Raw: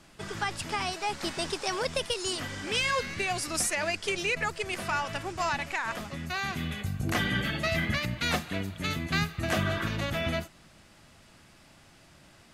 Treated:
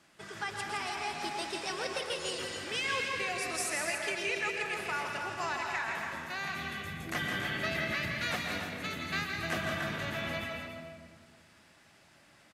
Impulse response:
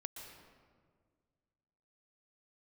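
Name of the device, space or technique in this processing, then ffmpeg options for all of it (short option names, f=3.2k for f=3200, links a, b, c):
stadium PA: -filter_complex "[0:a]highpass=f=220:p=1,equalizer=f=1.8k:t=o:w=0.8:g=3.5,aecho=1:1:166.2|282.8:0.447|0.355[a];[1:a]atrim=start_sample=2205[b];[a][b]afir=irnorm=-1:irlink=0,volume=-2.5dB"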